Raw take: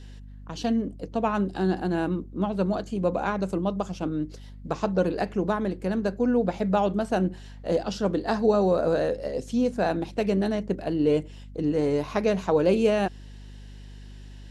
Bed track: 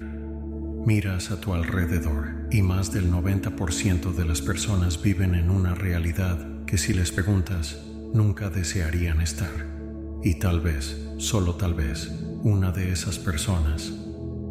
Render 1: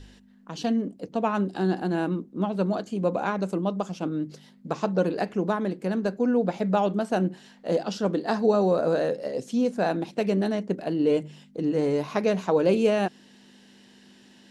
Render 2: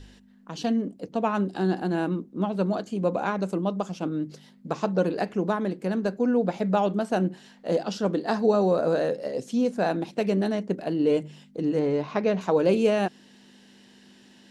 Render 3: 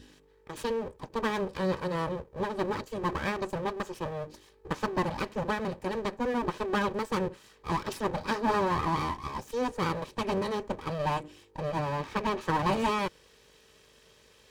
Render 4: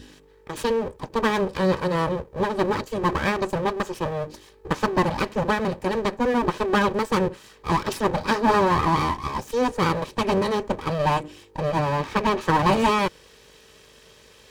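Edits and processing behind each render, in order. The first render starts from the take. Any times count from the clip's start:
hum removal 50 Hz, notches 3
0:11.79–0:12.41: high-frequency loss of the air 120 metres
full-wave rectification; notch comb filter 700 Hz
level +8 dB

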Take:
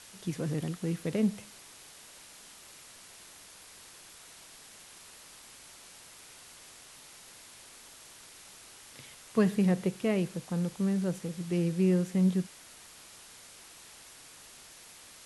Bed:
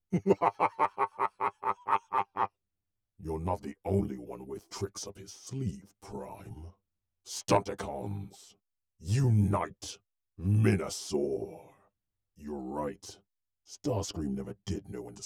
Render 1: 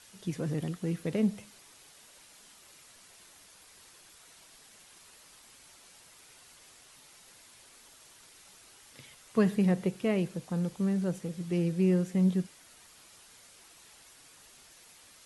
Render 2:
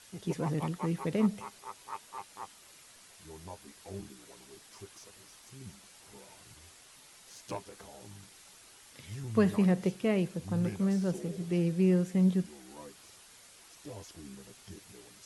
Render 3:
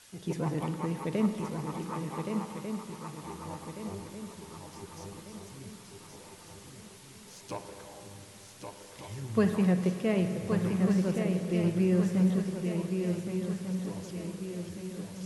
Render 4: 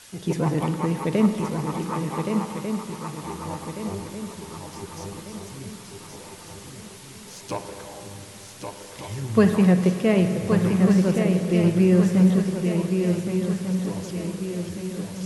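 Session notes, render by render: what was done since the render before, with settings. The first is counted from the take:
broadband denoise 6 dB, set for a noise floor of −53 dBFS
mix in bed −14 dB
feedback echo with a long and a short gap by turns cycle 1,495 ms, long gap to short 3 to 1, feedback 43%, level −5.5 dB; spring reverb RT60 3 s, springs 44/50 ms, chirp 65 ms, DRR 7.5 dB
level +8.5 dB

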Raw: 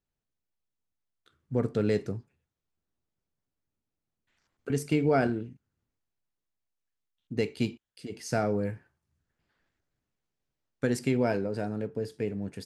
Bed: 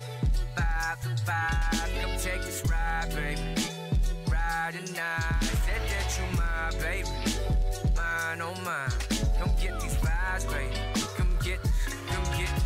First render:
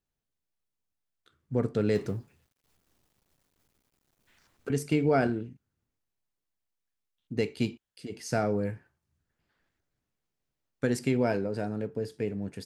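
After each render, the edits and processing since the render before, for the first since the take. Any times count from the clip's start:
0:01.95–0:04.69: mu-law and A-law mismatch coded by mu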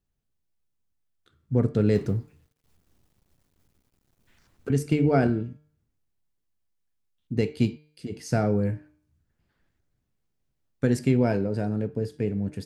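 low-shelf EQ 270 Hz +10 dB
hum removal 151.2 Hz, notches 32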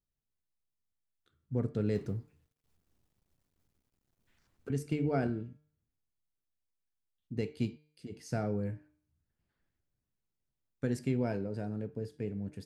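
level −10 dB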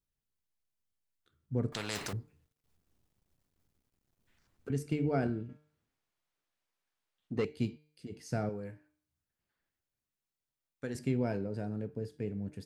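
0:01.72–0:02.13: every bin compressed towards the loudest bin 4 to 1
0:05.49–0:07.45: mid-hump overdrive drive 19 dB, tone 2,100 Hz, clips at −21 dBFS
0:08.49–0:10.95: low-shelf EQ 330 Hz −11.5 dB

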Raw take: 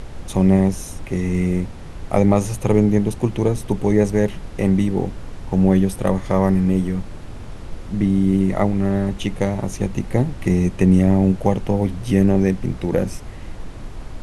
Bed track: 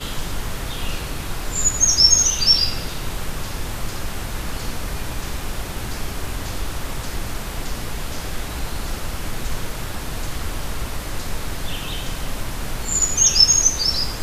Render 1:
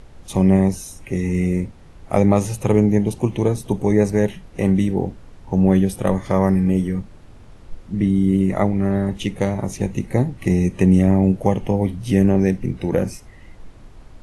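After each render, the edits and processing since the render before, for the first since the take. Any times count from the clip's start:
noise reduction from a noise print 10 dB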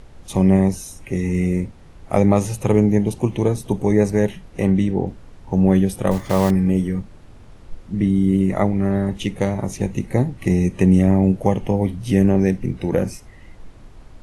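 0:04.65–0:05.07: high-frequency loss of the air 55 metres
0:06.11–0:06.52: one scale factor per block 5 bits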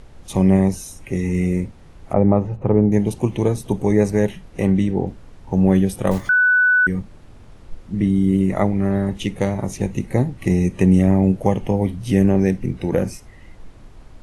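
0:02.13–0:02.92: low-pass filter 1,100 Hz
0:06.29–0:06.87: beep over 1,490 Hz −11.5 dBFS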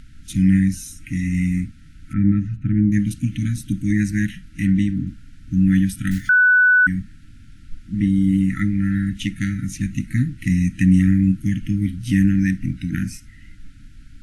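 dynamic equaliser 1,800 Hz, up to +7 dB, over −48 dBFS, Q 5.5
brick-wall band-stop 320–1,300 Hz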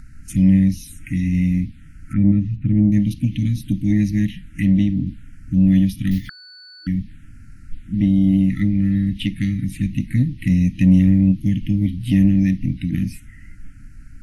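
in parallel at −8 dB: soft clipping −14 dBFS, distortion −14 dB
on the sum: phaser swept by the level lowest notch 520 Hz, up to 1,500 Hz, full sweep at −17 dBFS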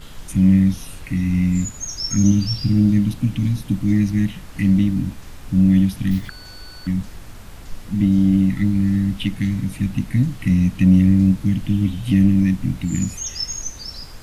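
mix in bed track −13.5 dB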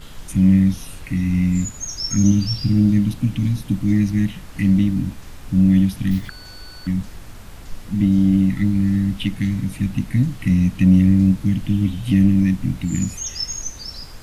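no processing that can be heard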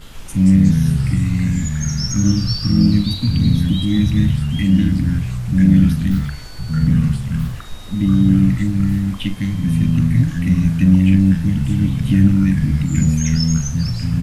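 delay with pitch and tempo change per echo 122 ms, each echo −3 semitones, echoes 3
double-tracking delay 42 ms −12 dB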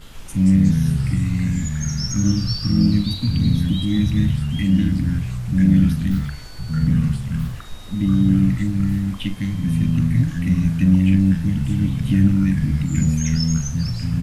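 level −3 dB

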